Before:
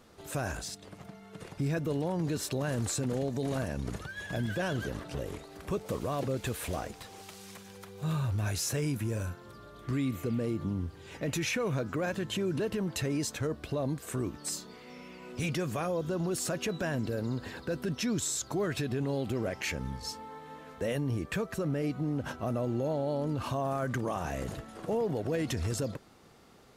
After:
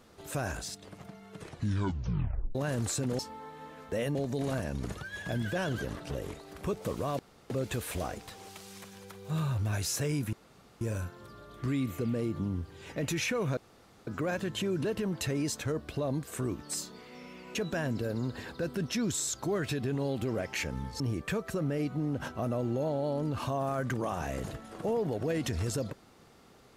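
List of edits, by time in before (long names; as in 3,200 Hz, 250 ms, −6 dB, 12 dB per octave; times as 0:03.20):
0:01.37: tape stop 1.18 s
0:06.23: splice in room tone 0.31 s
0:09.06: splice in room tone 0.48 s
0:11.82: splice in room tone 0.50 s
0:15.30–0:16.63: remove
0:20.08–0:21.04: move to 0:03.19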